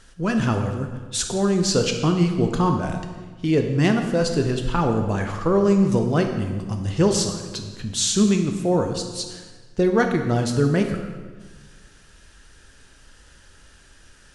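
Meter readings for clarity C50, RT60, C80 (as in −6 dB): 6.5 dB, 1.5 s, 8.0 dB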